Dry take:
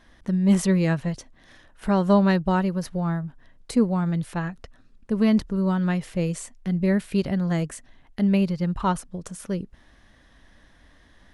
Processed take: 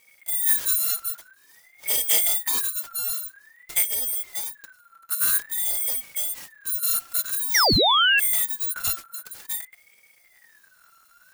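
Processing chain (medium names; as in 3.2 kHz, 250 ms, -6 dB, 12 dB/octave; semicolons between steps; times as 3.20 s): bit-reversed sample order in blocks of 256 samples; painted sound fall, 7.54–8.20 s, 480–4100 Hz -15 dBFS; ring modulator with a swept carrier 1.8 kHz, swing 25%, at 0.5 Hz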